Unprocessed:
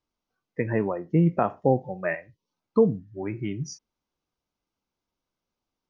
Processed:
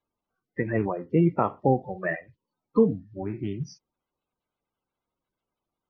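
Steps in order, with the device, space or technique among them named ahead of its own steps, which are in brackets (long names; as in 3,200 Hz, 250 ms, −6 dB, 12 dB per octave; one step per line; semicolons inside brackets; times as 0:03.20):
clip after many re-uploads (low-pass filter 4,600 Hz 24 dB per octave; spectral magnitudes quantised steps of 30 dB)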